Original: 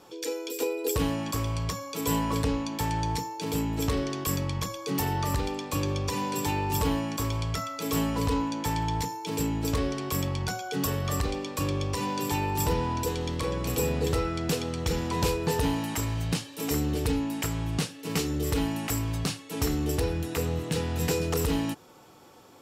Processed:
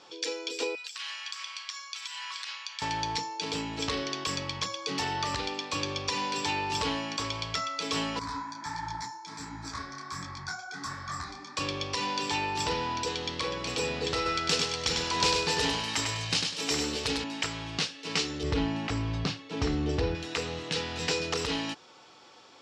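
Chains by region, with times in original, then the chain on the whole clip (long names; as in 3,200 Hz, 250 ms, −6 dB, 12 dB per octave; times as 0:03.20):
0:00.75–0:02.82: high-pass filter 1,300 Hz 24 dB per octave + downward compressor 12 to 1, threshold −36 dBFS
0:08.19–0:11.57: parametric band 1,600 Hz +4.5 dB 1 octave + phaser with its sweep stopped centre 1,200 Hz, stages 4 + micro pitch shift up and down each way 49 cents
0:14.16–0:17.24: high-shelf EQ 7,100 Hz +10 dB + repeating echo 99 ms, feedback 28%, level −4.5 dB
0:18.43–0:20.15: low-pass filter 8,600 Hz + spectral tilt −3 dB per octave
whole clip: low-pass filter 5,200 Hz 24 dB per octave; spectral tilt +3.5 dB per octave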